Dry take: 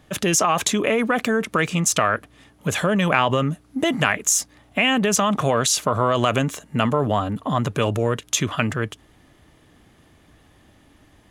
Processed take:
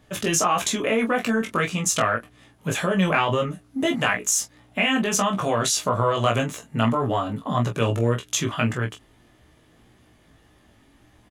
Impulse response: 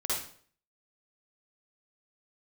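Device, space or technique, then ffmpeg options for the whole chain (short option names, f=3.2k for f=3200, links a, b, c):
double-tracked vocal: -filter_complex "[0:a]asplit=2[a][b];[b]adelay=26,volume=-7.5dB[c];[a][c]amix=inputs=2:normalize=0,flanger=delay=16:depth=2.5:speed=1.7"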